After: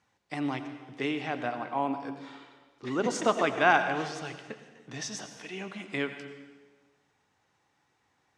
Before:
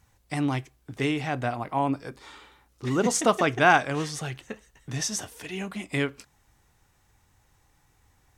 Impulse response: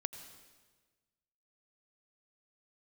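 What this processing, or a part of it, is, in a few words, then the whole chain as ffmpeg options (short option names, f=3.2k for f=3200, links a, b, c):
supermarket ceiling speaker: -filter_complex "[0:a]highpass=220,lowpass=5k[a];[1:a]atrim=start_sample=2205[b];[a][b]afir=irnorm=-1:irlink=0,volume=-2.5dB"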